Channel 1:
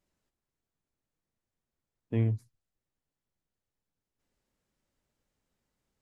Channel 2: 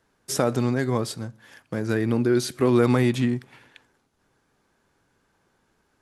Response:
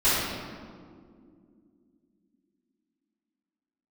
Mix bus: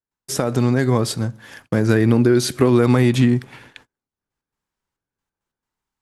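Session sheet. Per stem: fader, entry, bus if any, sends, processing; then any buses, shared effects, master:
−2.0 dB, 0.00 s, no send, low shelf with overshoot 710 Hz −7.5 dB, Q 3; gate pattern ".xxxx..x.x" 136 BPM; automatic ducking −11 dB, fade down 0.20 s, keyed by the second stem
+1.5 dB, 0.00 s, no send, downward compressor, threshold −20 dBFS, peak gain reduction 6.5 dB; noise gate −55 dBFS, range −31 dB; automatic gain control gain up to 7.5 dB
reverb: not used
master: low-shelf EQ 130 Hz +5 dB

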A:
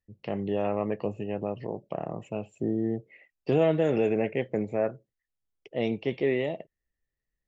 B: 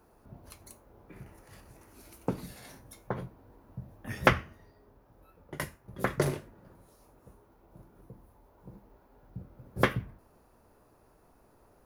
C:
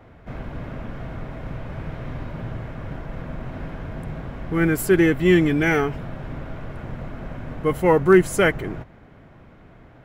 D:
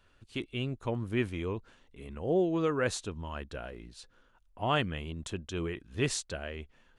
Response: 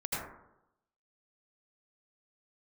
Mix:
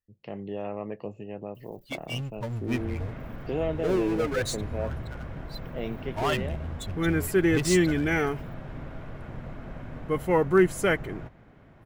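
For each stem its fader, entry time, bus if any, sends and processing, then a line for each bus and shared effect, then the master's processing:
−6.0 dB, 0.00 s, no send, no processing
−19.0 dB, 2.05 s, no send, no processing
−6.0 dB, 2.45 s, no send, no processing
+0.5 dB, 1.55 s, no send, spectral dynamics exaggerated over time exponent 3; power curve on the samples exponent 0.5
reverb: not used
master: no processing

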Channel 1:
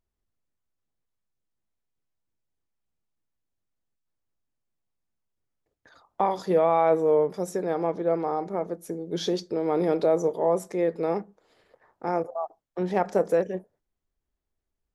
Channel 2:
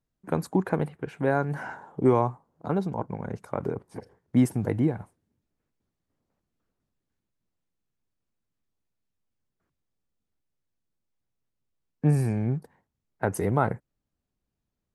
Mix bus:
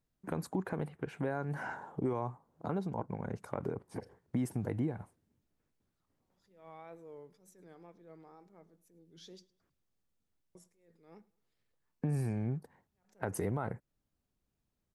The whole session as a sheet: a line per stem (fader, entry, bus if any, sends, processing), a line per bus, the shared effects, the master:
−20.0 dB, 0.00 s, muted 0:09.47–0:10.55, no send, echo send −23 dB, parametric band 620 Hz −11.5 dB 2 octaves; tape wow and flutter 72 cents; level that may rise only so fast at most 100 dB per second
−0.5 dB, 0.00 s, no send, no echo send, brickwall limiter −15.5 dBFS, peak gain reduction 6.5 dB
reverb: not used
echo: repeating echo 107 ms, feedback 36%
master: downward compressor 2 to 1, threshold −37 dBFS, peak gain reduction 9.5 dB

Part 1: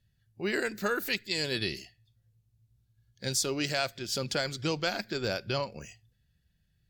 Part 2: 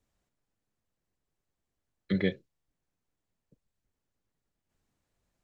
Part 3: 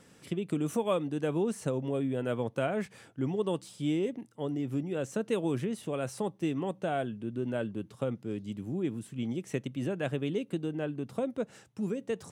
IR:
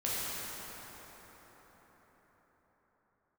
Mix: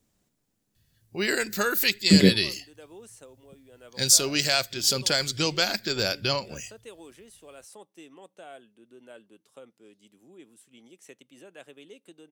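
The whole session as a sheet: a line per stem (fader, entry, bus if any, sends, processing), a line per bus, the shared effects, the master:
+2.5 dB, 0.75 s, no send, no processing
+1.5 dB, 0.00 s, no send, parametric band 220 Hz +11 dB 2.3 octaves
−13.5 dB, 1.55 s, no send, high-pass filter 360 Hz 12 dB per octave; automatic ducking −6 dB, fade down 0.40 s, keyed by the second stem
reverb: not used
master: high-shelf EQ 3,200 Hz +11.5 dB

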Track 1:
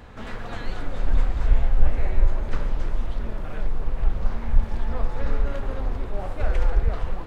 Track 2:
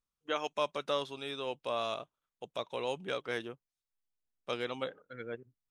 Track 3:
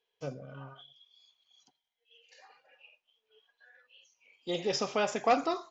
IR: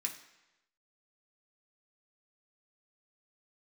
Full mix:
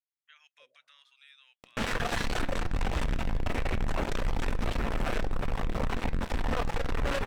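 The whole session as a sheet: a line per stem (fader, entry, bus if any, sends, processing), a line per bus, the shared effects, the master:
−4.0 dB, 1.60 s, send −7.5 dB, reverb reduction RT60 0.63 s; fuzz pedal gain 32 dB, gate −35 dBFS
−5.5 dB, 0.00 s, no send, brickwall limiter −25 dBFS, peak gain reduction 6.5 dB; downward compressor 1.5 to 1, threshold −40 dBFS, peak gain reduction 3.5 dB; four-pole ladder high-pass 1,600 Hz, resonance 50%
−16.0 dB, 0.35 s, no send, envelope filter 490–1,900 Hz, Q 12, down, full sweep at −34.5 dBFS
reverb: on, RT60 1.0 s, pre-delay 3 ms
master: brickwall limiter −20 dBFS, peak gain reduction 7 dB

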